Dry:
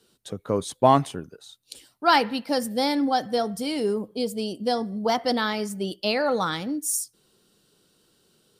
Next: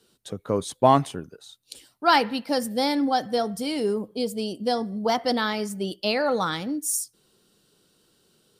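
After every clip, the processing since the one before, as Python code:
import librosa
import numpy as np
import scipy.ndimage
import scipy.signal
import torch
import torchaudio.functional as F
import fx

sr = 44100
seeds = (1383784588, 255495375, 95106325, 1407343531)

y = x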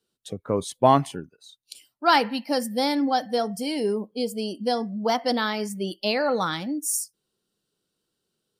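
y = fx.noise_reduce_blind(x, sr, reduce_db=15)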